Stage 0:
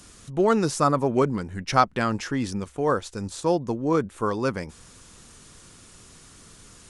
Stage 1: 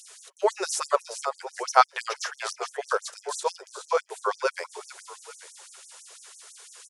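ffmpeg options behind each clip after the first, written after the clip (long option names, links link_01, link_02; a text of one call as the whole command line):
ffmpeg -i in.wav -filter_complex "[0:a]bandreject=frequency=1200:width=15,asplit=5[link_01][link_02][link_03][link_04][link_05];[link_02]adelay=420,afreqshift=-33,volume=-9.5dB[link_06];[link_03]adelay=840,afreqshift=-66,volume=-17.9dB[link_07];[link_04]adelay=1260,afreqshift=-99,volume=-26.3dB[link_08];[link_05]adelay=1680,afreqshift=-132,volume=-34.7dB[link_09];[link_01][link_06][link_07][link_08][link_09]amix=inputs=5:normalize=0,afftfilt=real='re*gte(b*sr/1024,350*pow(5700/350,0.5+0.5*sin(2*PI*6*pts/sr)))':imag='im*gte(b*sr/1024,350*pow(5700/350,0.5+0.5*sin(2*PI*6*pts/sr)))':win_size=1024:overlap=0.75,volume=3dB" out.wav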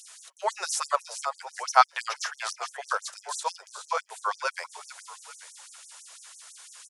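ffmpeg -i in.wav -af "highpass=frequency=670:width=0.5412,highpass=frequency=670:width=1.3066" out.wav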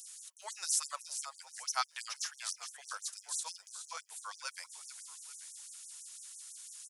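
ffmpeg -i in.wav -af "aderivative,volume=-1dB" out.wav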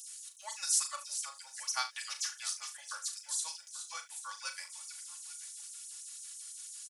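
ffmpeg -i in.wav -filter_complex "[0:a]highpass=frequency=1000:poles=1,aecho=1:1:3.5:0.79,asplit=2[link_01][link_02];[link_02]aecho=0:1:38|73:0.376|0.168[link_03];[link_01][link_03]amix=inputs=2:normalize=0" out.wav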